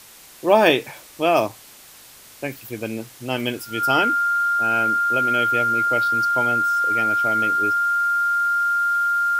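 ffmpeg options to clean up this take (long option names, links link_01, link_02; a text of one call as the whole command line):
ffmpeg -i in.wav -af "adeclick=threshold=4,bandreject=frequency=1400:width=30,afwtdn=0.0063" out.wav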